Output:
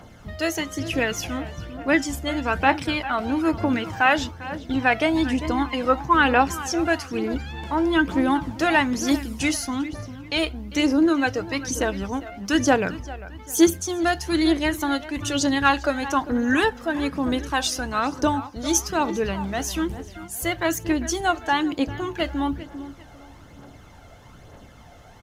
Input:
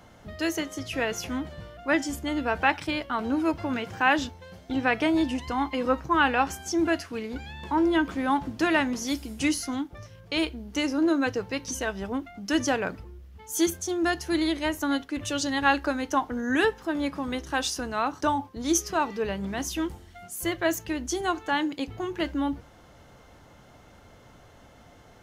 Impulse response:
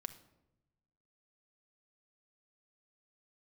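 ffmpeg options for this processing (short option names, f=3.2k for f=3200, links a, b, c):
-filter_complex "[0:a]atempo=1,asplit=2[a][b];[b]adelay=398,lowpass=f=3.4k:p=1,volume=-15dB,asplit=2[c][d];[d]adelay=398,lowpass=f=3.4k:p=1,volume=0.39,asplit=2[e][f];[f]adelay=398,lowpass=f=3.4k:p=1,volume=0.39,asplit=2[g][h];[h]adelay=398,lowpass=f=3.4k:p=1,volume=0.39[i];[a][c][e][g][i]amix=inputs=5:normalize=0,aphaser=in_gain=1:out_gain=1:delay=1.6:decay=0.44:speed=1.1:type=triangular,volume=3.5dB"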